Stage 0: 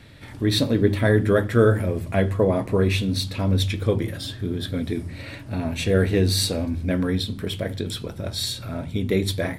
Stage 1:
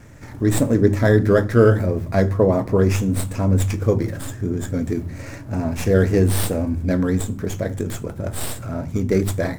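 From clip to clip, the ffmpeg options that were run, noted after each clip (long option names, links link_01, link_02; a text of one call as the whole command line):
ffmpeg -i in.wav -filter_complex "[0:a]lowpass=10000,acrossover=split=2200[link_01][link_02];[link_02]aeval=exprs='abs(val(0))':channel_layout=same[link_03];[link_01][link_03]amix=inputs=2:normalize=0,volume=3.5dB" out.wav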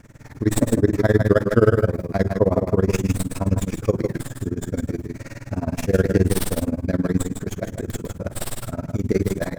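ffmpeg -i in.wav -af "aecho=1:1:150:0.531,tremolo=f=19:d=0.96,volume=1dB" out.wav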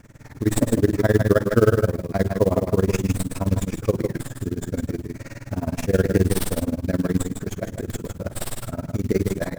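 ffmpeg -i in.wav -af "acrusher=bits=6:mode=log:mix=0:aa=0.000001,volume=-1dB" out.wav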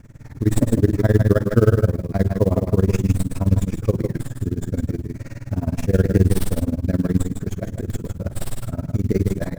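ffmpeg -i in.wav -af "lowshelf=frequency=240:gain=10.5,volume=-3.5dB" out.wav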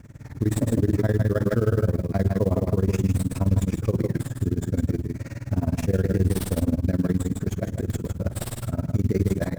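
ffmpeg -i in.wav -af "alimiter=limit=-12dB:level=0:latency=1:release=43,highpass=45" out.wav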